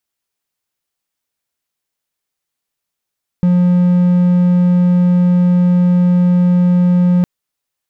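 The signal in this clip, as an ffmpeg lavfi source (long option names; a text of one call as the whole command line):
ffmpeg -f lavfi -i "aevalsrc='0.501*(1-4*abs(mod(178*t+0.25,1)-0.5))':duration=3.81:sample_rate=44100" out.wav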